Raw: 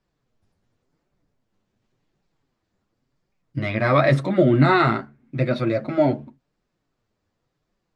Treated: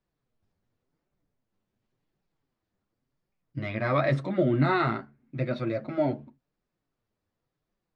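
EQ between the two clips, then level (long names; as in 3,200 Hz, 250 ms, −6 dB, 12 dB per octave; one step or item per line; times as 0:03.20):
high-frequency loss of the air 53 metres
−7.5 dB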